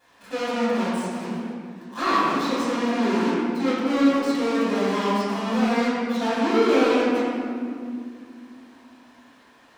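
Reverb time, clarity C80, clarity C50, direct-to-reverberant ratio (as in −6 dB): 2.4 s, −1.5 dB, −4.0 dB, −12.5 dB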